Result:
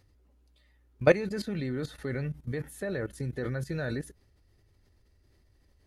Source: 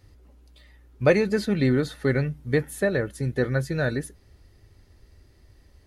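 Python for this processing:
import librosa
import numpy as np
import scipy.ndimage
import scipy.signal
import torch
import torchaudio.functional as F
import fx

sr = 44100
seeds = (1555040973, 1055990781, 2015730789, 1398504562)

y = fx.level_steps(x, sr, step_db=16)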